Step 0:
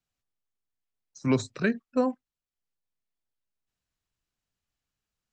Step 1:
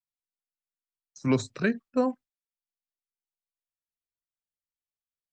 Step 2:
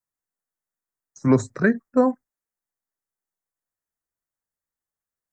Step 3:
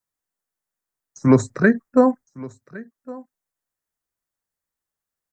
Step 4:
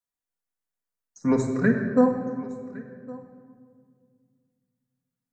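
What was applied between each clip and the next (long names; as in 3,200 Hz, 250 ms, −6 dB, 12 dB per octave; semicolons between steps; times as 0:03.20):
noise gate with hold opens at −46 dBFS
drawn EQ curve 1,900 Hz 0 dB, 2,800 Hz −23 dB, 6,700 Hz −3 dB; level +7 dB
single-tap delay 1,111 ms −20.5 dB; level +3.5 dB
rectangular room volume 3,300 cubic metres, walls mixed, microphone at 1.8 metres; level −8.5 dB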